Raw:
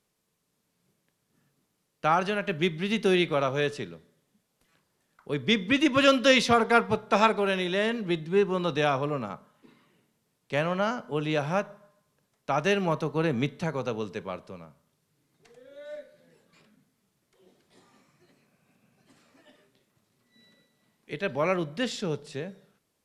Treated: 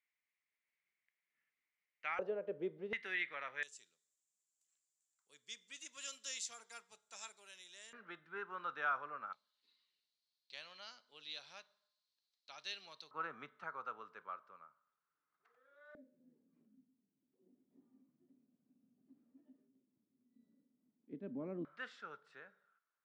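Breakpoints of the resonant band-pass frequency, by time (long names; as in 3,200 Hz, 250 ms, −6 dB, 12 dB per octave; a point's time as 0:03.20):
resonant band-pass, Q 7
2,100 Hz
from 0:02.19 490 Hz
from 0:02.93 1,900 Hz
from 0:03.63 7,300 Hz
from 0:07.93 1,400 Hz
from 0:09.33 4,200 Hz
from 0:13.11 1,300 Hz
from 0:15.95 260 Hz
from 0:21.65 1,400 Hz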